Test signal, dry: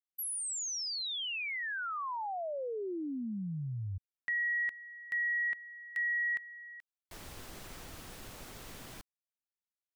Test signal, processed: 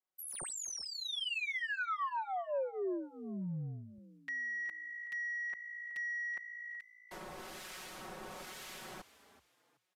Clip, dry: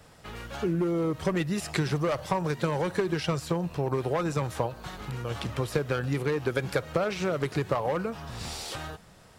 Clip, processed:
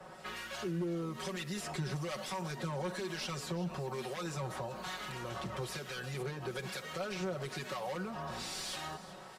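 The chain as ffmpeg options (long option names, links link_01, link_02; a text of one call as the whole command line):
ffmpeg -i in.wav -filter_complex "[0:a]acrossover=split=1500[link_01][link_02];[link_01]aeval=exprs='val(0)*(1-0.7/2+0.7/2*cos(2*PI*1.1*n/s))':channel_layout=same[link_03];[link_02]aeval=exprs='val(0)*(1-0.7/2-0.7/2*cos(2*PI*1.1*n/s))':channel_layout=same[link_04];[link_03][link_04]amix=inputs=2:normalize=0,highshelf=frequency=4400:gain=10.5,acrossover=split=120|3500[link_05][link_06][link_07];[link_06]acompressor=threshold=-41dB:ratio=6:attack=0.17:release=104:knee=6:detection=peak[link_08];[link_05][link_08][link_07]amix=inputs=3:normalize=0,asplit=2[link_09][link_10];[link_10]highpass=frequency=720:poles=1,volume=23dB,asoftclip=type=tanh:threshold=-15dB[link_11];[link_09][link_11]amix=inputs=2:normalize=0,lowpass=frequency=1000:poles=1,volume=-6dB,aecho=1:1:5.4:0.98,asplit=2[link_12][link_13];[link_13]asplit=3[link_14][link_15][link_16];[link_14]adelay=376,afreqshift=56,volume=-16dB[link_17];[link_15]adelay=752,afreqshift=112,volume=-25.9dB[link_18];[link_16]adelay=1128,afreqshift=168,volume=-35.8dB[link_19];[link_17][link_18][link_19]amix=inputs=3:normalize=0[link_20];[link_12][link_20]amix=inputs=2:normalize=0,aresample=32000,aresample=44100,volume=-7.5dB" out.wav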